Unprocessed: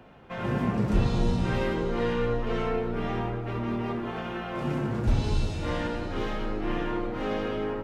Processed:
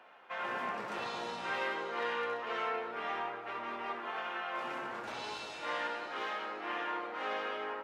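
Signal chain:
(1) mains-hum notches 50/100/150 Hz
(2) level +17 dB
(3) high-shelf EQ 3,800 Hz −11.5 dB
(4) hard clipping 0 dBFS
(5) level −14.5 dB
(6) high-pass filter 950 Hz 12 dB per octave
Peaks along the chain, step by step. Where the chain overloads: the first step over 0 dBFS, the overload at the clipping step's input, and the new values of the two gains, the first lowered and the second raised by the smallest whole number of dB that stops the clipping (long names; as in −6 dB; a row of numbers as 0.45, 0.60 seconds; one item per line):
−12.0, +5.0, +5.0, 0.0, −14.5, −22.5 dBFS
step 2, 5.0 dB
step 2 +12 dB, step 5 −9.5 dB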